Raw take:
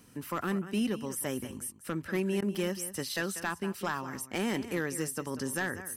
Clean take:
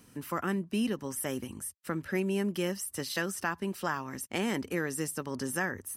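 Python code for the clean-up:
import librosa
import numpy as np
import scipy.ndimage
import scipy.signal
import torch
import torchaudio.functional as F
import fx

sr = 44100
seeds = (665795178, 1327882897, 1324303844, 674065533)

y = fx.fix_declip(x, sr, threshold_db=-23.5)
y = fx.fix_interpolate(y, sr, at_s=(2.55,), length_ms=1.1)
y = fx.fix_interpolate(y, sr, at_s=(2.41,), length_ms=11.0)
y = fx.fix_echo_inverse(y, sr, delay_ms=191, level_db=-14.0)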